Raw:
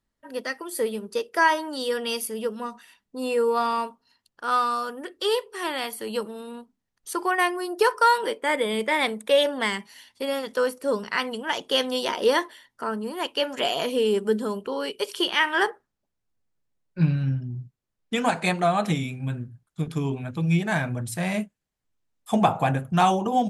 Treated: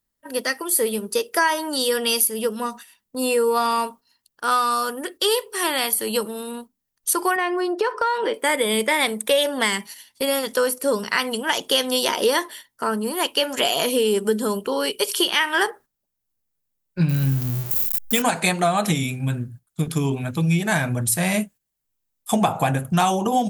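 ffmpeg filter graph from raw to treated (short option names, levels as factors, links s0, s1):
-filter_complex "[0:a]asettb=1/sr,asplit=3[s0][s1][s2];[s0]atrim=end=7.364[s3];[s1]atrim=start=7.36:end=8.34,asetpts=PTS-STARTPTS,afade=t=in:d=0.004:c=qsin,afade=t=out:st=0.976:d=0.004:c=qsin,highpass=240,lowpass=3200,lowshelf=f=440:g=5.5,acompressor=threshold=0.0562:ratio=2.5:attack=3.2:release=140:knee=1:detection=peak[s4];[s2]atrim=start=8.336[s5];[s3][s4]acrossfade=d=0.004:c1=hsin:c2=qsin[s6];[s6][s5]acrossfade=d=0.004:c1=qsin:c2=hsin,asettb=1/sr,asplit=3[s7][s8][s9];[s7]atrim=end=17.094[s10];[s8]atrim=start=17.09:end=18.22,asetpts=PTS-STARTPTS,afade=t=in:d=0.004:c=qsin,afade=t=out:st=1.126:d=0.004:c=qsin,aeval=exprs='val(0)+0.5*0.0141*sgn(val(0))':c=same,highshelf=f=11000:g=12[s11];[s9]atrim=start=18.216[s12];[s10][s11]acrossfade=d=0.004:c1=hsin:c2=qsin[s13];[s13][s12]acrossfade=d=0.004:c1=qsin:c2=hsin,agate=range=0.355:threshold=0.00562:ratio=16:detection=peak,aemphasis=mode=production:type=50fm,acompressor=threshold=0.0708:ratio=3,volume=2"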